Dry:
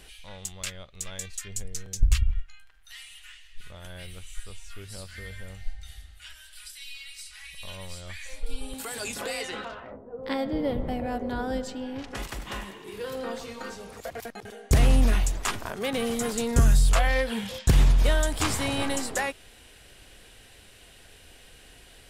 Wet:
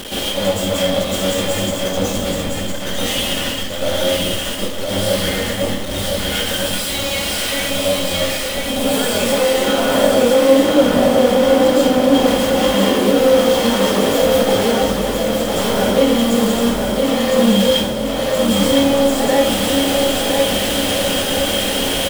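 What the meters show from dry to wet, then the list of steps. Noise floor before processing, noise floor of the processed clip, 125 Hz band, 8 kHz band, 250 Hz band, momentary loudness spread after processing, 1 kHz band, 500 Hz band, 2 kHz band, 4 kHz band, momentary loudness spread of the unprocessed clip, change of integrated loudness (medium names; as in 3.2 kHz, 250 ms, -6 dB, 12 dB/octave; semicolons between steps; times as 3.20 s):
-52 dBFS, -22 dBFS, +3.5 dB, +12.5 dB, +17.5 dB, 7 LU, +14.5 dB, +20.5 dB, +12.5 dB, +19.5 dB, 22 LU, +12.5 dB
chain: one-bit comparator; bass shelf 310 Hz -7 dB; band-stop 710 Hz, Q 12; small resonant body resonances 240/530/3200 Hz, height 14 dB, ringing for 20 ms; on a send: feedback delay 1011 ms, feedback 44%, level -4 dB; on the sum: plate-style reverb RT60 0.75 s, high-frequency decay 0.75×, pre-delay 100 ms, DRR -9.5 dB; trim -5.5 dB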